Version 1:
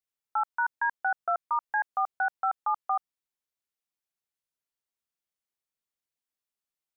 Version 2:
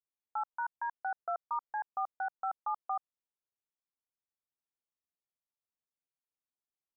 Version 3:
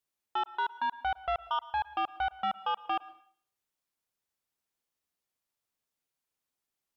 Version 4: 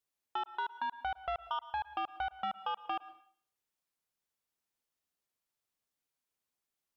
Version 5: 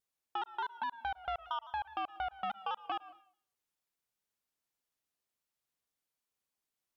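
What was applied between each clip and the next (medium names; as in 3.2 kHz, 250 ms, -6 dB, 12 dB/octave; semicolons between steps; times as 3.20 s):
low-pass 1.3 kHz 24 dB/octave; trim -6 dB
sine folder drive 4 dB, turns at -26 dBFS; plate-style reverb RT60 0.51 s, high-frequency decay 1×, pre-delay 100 ms, DRR 17.5 dB
compression, threshold -31 dBFS, peak gain reduction 3.5 dB; trim -2 dB
vibrato with a chosen wave saw down 4.8 Hz, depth 100 cents; trim -1 dB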